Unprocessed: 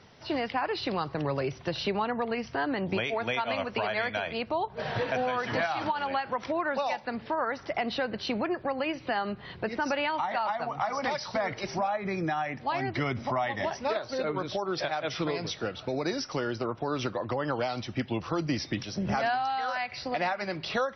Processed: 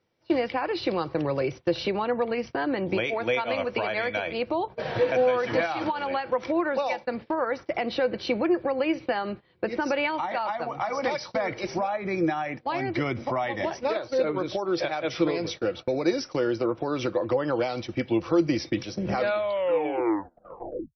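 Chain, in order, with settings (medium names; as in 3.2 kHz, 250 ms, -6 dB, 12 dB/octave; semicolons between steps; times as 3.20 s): tape stop on the ending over 1.89 s; small resonant body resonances 340/500/2300 Hz, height 11 dB, ringing for 60 ms; gate -36 dBFS, range -22 dB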